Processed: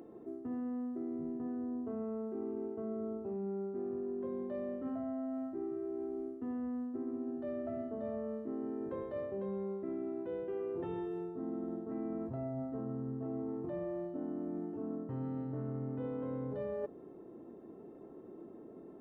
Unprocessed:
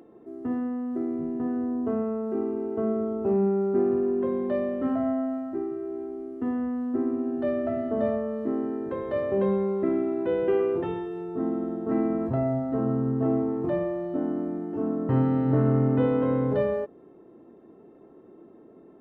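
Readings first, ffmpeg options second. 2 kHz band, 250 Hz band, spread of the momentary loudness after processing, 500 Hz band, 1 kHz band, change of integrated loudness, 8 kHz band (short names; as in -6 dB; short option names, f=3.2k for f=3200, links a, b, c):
-16.5 dB, -12.0 dB, 7 LU, -13.0 dB, -14.0 dB, -13.0 dB, n/a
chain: -af "equalizer=f=2.5k:t=o:w=2.3:g=-5,areverse,acompressor=threshold=-36dB:ratio=12,areverse"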